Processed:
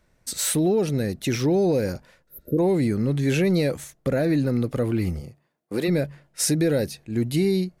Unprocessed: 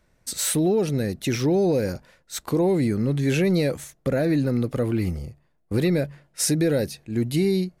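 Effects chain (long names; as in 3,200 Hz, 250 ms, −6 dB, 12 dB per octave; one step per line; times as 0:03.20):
0:02.30–0:02.56: healed spectral selection 620–11,000 Hz before
0:05.20–0:05.87: high-pass filter 120 Hz → 290 Hz 12 dB per octave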